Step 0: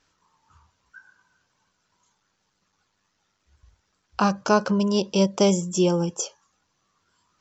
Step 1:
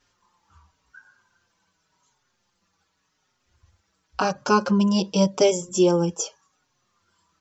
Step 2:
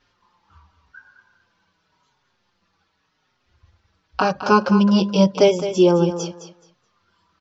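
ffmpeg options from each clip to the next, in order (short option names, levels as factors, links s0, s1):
-filter_complex "[0:a]asplit=2[s0][s1];[s1]adelay=5.1,afreqshift=-0.89[s2];[s0][s2]amix=inputs=2:normalize=1,volume=1.5"
-af "lowpass=f=4800:w=0.5412,lowpass=f=4800:w=1.3066,aecho=1:1:213|426|639:0.282|0.0535|0.0102,volume=1.58"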